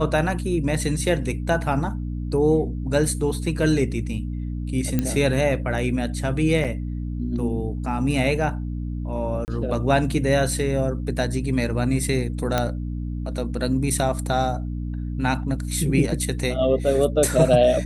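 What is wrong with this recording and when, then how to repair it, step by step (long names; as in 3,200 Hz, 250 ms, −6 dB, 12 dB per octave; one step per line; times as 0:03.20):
mains hum 60 Hz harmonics 5 −28 dBFS
0:04.99: click −9 dBFS
0:06.64–0:06.65: drop-out 6.4 ms
0:09.45–0:09.48: drop-out 29 ms
0:12.58: click −7 dBFS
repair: click removal
hum removal 60 Hz, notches 5
repair the gap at 0:06.64, 6.4 ms
repair the gap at 0:09.45, 29 ms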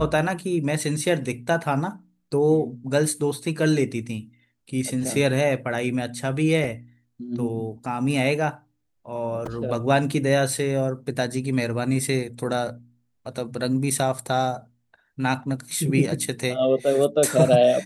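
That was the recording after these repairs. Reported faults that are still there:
0:12.58: click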